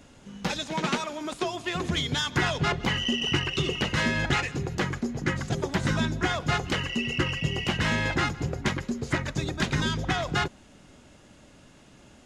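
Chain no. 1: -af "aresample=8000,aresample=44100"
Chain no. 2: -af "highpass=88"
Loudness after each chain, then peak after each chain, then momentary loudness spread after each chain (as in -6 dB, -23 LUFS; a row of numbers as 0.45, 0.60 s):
-28.0, -28.0 LUFS; -11.5, -11.0 dBFS; 6, 6 LU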